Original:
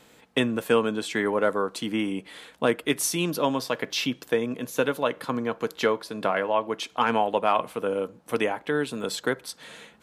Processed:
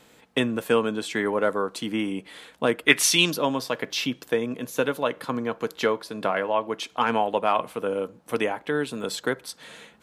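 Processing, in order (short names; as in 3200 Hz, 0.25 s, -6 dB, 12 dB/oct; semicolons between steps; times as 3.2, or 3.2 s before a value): 2.87–3.33 bell 1700 Hz -> 5400 Hz +14.5 dB 2.2 oct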